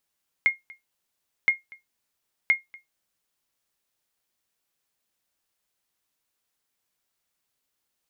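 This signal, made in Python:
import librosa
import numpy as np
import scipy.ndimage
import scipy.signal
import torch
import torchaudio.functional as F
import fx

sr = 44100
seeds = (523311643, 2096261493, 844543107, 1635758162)

y = fx.sonar_ping(sr, hz=2140.0, decay_s=0.16, every_s=1.02, pings=3, echo_s=0.24, echo_db=-25.0, level_db=-11.0)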